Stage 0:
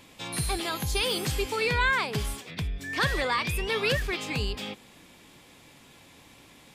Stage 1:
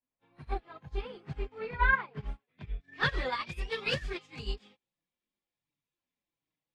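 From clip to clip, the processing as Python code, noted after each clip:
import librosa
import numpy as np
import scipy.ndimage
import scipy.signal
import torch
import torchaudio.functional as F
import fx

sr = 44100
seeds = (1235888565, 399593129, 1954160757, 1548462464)

y = fx.filter_sweep_lowpass(x, sr, from_hz=1600.0, to_hz=6400.0, start_s=2.17, end_s=3.67, q=0.86)
y = fx.chorus_voices(y, sr, voices=6, hz=0.32, base_ms=24, depth_ms=4.5, mix_pct=65)
y = fx.upward_expand(y, sr, threshold_db=-50.0, expansion=2.5)
y = y * 10.0 ** (2.0 / 20.0)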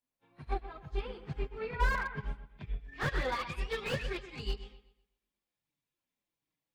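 y = fx.echo_wet_lowpass(x, sr, ms=125, feedback_pct=33, hz=3500.0, wet_db=-12.5)
y = fx.slew_limit(y, sr, full_power_hz=40.0)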